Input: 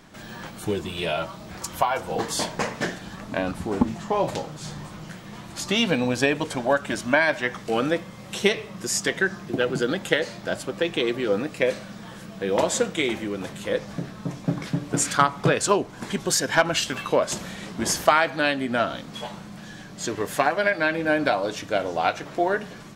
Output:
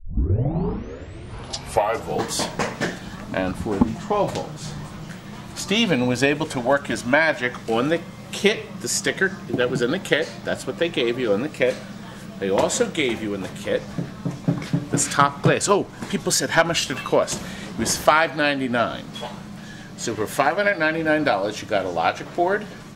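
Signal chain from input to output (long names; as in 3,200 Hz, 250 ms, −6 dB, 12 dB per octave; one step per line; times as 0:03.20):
turntable start at the beginning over 2.22 s
low-shelf EQ 140 Hz +4 dB
level +2 dB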